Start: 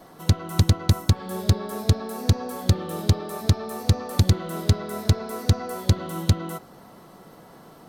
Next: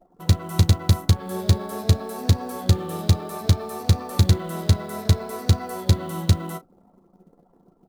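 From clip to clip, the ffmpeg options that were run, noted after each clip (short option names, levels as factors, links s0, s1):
-af "anlmdn=0.398,acrusher=bits=7:mode=log:mix=0:aa=0.000001,aecho=1:1:11|35:0.355|0.188"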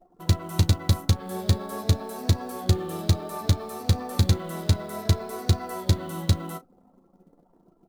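-af "flanger=delay=2.7:depth=1.3:regen=67:speed=0.37:shape=triangular,volume=1.26"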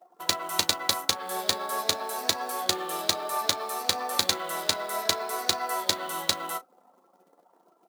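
-af "highpass=740,volume=2.37"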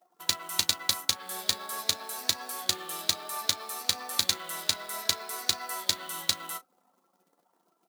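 -af "equalizer=f=560:t=o:w=2.6:g=-11.5"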